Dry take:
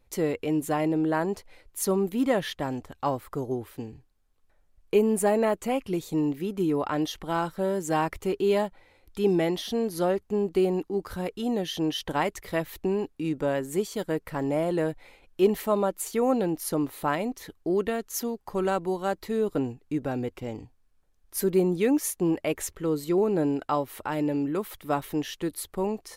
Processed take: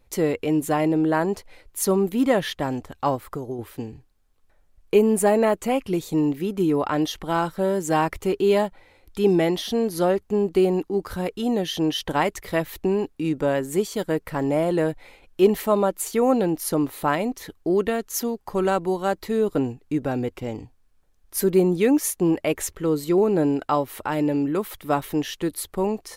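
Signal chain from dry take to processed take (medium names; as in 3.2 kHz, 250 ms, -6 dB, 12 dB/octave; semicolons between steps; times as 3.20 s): 3.15–3.59 s: compression, threshold -32 dBFS, peak gain reduction 7.5 dB; trim +4.5 dB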